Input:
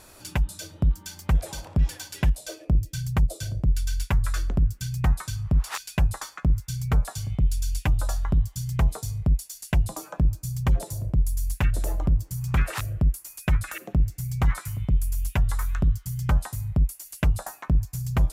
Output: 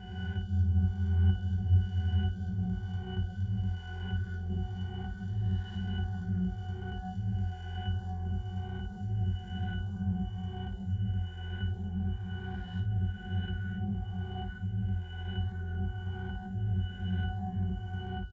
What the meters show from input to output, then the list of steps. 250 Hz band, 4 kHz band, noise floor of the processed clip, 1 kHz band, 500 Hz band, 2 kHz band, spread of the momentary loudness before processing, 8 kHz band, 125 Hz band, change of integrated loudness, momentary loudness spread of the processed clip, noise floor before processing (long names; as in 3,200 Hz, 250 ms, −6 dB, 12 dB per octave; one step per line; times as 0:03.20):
−4.0 dB, −7.0 dB, −42 dBFS, −8.0 dB, −9.5 dB, −8.5 dB, 3 LU, below −30 dB, −5.5 dB, −7.5 dB, 9 LU, −50 dBFS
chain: peak hold with a rise ahead of every peak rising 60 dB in 2.55 s
high-shelf EQ 2,100 Hz +9.5 dB
resonances in every octave F#, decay 0.39 s
ambience of single reflections 20 ms −7.5 dB, 56 ms −7.5 dB
downsampling to 16,000 Hz
level −1.5 dB